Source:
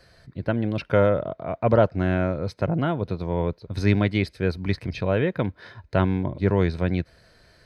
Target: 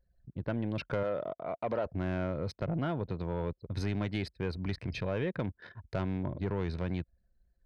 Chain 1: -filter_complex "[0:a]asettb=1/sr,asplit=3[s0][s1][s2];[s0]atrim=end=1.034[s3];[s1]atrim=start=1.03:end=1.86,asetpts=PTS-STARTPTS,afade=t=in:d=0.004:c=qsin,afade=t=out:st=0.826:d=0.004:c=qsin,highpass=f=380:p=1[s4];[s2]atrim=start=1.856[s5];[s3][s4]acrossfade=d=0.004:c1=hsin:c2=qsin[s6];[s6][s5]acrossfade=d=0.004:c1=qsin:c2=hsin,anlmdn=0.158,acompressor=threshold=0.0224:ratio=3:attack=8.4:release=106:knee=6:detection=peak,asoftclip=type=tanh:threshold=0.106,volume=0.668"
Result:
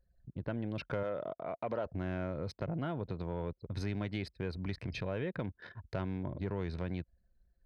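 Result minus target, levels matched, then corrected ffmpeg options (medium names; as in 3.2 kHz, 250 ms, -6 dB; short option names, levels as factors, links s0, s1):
compression: peak gain reduction +4.5 dB
-filter_complex "[0:a]asettb=1/sr,asplit=3[s0][s1][s2];[s0]atrim=end=1.034[s3];[s1]atrim=start=1.03:end=1.86,asetpts=PTS-STARTPTS,afade=t=in:d=0.004:c=qsin,afade=t=out:st=0.826:d=0.004:c=qsin,highpass=f=380:p=1[s4];[s2]atrim=start=1.856[s5];[s3][s4]acrossfade=d=0.004:c1=hsin:c2=qsin[s6];[s6][s5]acrossfade=d=0.004:c1=qsin:c2=hsin,anlmdn=0.158,acompressor=threshold=0.0501:ratio=3:attack=8.4:release=106:knee=6:detection=peak,asoftclip=type=tanh:threshold=0.106,volume=0.668"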